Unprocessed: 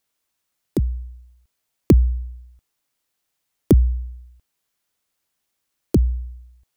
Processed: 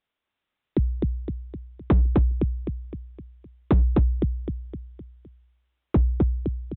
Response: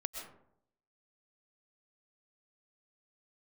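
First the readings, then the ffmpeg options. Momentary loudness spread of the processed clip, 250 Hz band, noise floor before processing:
19 LU, −2.5 dB, −77 dBFS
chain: -af "aecho=1:1:257|514|771|1028|1285|1542:0.708|0.34|0.163|0.0783|0.0376|0.018,aresample=8000,asoftclip=type=hard:threshold=-13dB,aresample=44100,volume=-1.5dB"

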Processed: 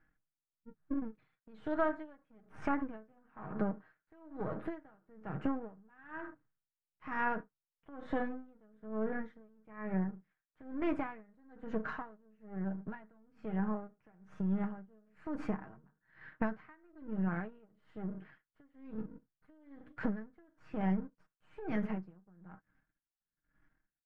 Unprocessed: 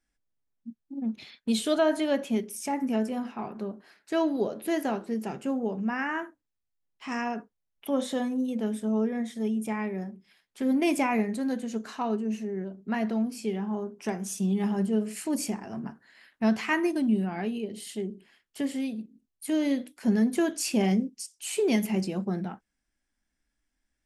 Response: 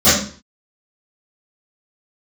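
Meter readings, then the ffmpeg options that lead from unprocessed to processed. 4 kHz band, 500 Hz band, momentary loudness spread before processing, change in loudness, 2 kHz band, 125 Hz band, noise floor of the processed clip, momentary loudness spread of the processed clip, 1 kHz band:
below −25 dB, −12.0 dB, 12 LU, −10.0 dB, −9.0 dB, −6.5 dB, below −85 dBFS, 20 LU, −7.5 dB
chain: -af "aeval=exprs='if(lt(val(0),0),0.251*val(0),val(0))':channel_layout=same,equalizer=frequency=130:width_type=o:width=1.4:gain=10.5,aecho=1:1:6.4:0.5,acompressor=threshold=-37dB:ratio=5,lowpass=frequency=1500:width_type=q:width=2.7,aeval=exprs='val(0)*pow(10,-32*(0.5-0.5*cos(2*PI*1.1*n/s))/20)':channel_layout=same,volume=6.5dB"

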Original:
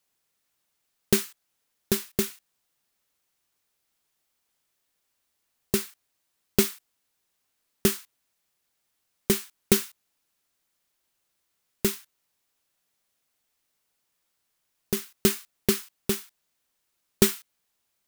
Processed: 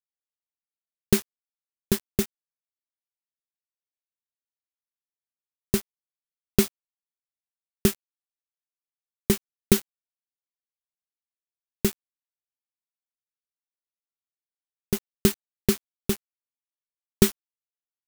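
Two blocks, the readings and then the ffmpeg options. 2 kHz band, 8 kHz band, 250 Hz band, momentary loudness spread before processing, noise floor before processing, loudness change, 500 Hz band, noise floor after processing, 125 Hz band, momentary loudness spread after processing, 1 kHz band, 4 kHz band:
−1.5 dB, −2.0 dB, +2.5 dB, 12 LU, −77 dBFS, 0.0 dB, +0.5 dB, below −85 dBFS, +4.5 dB, 8 LU, −1.0 dB, −2.0 dB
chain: -af "lowshelf=frequency=200:gain=9.5,aeval=exprs='val(0)*gte(abs(val(0)),0.0501)':channel_layout=same,volume=-1.5dB"

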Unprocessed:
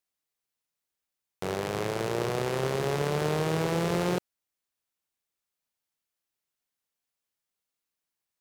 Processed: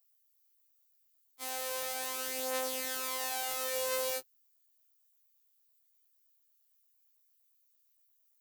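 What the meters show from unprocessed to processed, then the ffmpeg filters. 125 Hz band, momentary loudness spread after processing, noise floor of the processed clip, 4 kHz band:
below −40 dB, 5 LU, −72 dBFS, 0.0 dB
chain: -af "afftfilt=real='hypot(re,im)*cos(PI*b)':imag='0':win_size=2048:overlap=0.75,aemphasis=mode=production:type=riaa,afftfilt=real='re*2.45*eq(mod(b,6),0)':imag='im*2.45*eq(mod(b,6),0)':win_size=2048:overlap=0.75,volume=-3.5dB"

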